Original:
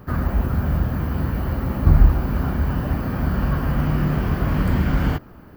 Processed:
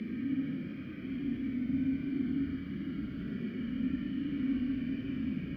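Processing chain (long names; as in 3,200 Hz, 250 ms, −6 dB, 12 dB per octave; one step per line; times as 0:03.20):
extreme stretch with random phases 14×, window 0.05 s, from 0:03.11
formant filter i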